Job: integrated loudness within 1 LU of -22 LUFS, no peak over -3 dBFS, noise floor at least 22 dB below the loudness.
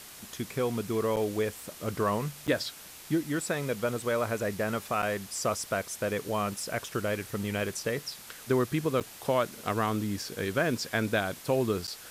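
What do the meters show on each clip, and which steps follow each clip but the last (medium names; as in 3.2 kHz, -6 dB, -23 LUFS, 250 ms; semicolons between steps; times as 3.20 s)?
dropouts 5; longest dropout 7.6 ms; noise floor -48 dBFS; noise floor target -53 dBFS; loudness -31.0 LUFS; peak level -14.0 dBFS; loudness target -22.0 LUFS
-> interpolate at 1.16/2.47/5.02/9.00/11.87 s, 7.6 ms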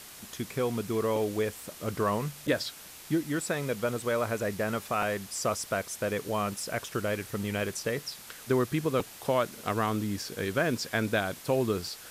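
dropouts 0; noise floor -48 dBFS; noise floor target -53 dBFS
-> noise print and reduce 6 dB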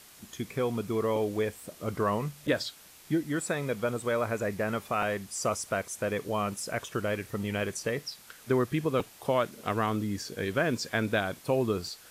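noise floor -53 dBFS; loudness -31.0 LUFS; peak level -14.5 dBFS; loudness target -22.0 LUFS
-> trim +9 dB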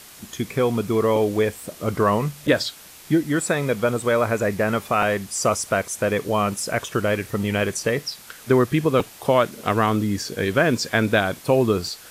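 loudness -22.0 LUFS; peak level -5.5 dBFS; noise floor -44 dBFS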